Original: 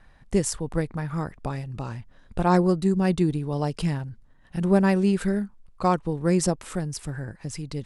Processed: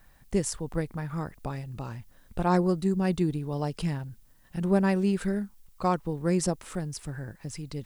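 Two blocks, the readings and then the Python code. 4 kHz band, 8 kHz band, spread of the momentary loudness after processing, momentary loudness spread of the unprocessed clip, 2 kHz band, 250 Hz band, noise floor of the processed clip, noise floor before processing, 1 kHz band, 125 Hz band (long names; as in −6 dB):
−4.0 dB, −4.0 dB, 14 LU, 14 LU, −4.0 dB, −4.0 dB, −58 dBFS, −54 dBFS, −4.0 dB, −4.0 dB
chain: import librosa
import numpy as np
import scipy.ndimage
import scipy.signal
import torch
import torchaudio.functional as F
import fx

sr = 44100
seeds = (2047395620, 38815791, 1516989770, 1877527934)

y = fx.dmg_noise_colour(x, sr, seeds[0], colour='blue', level_db=-64.0)
y = y * 10.0 ** (-4.0 / 20.0)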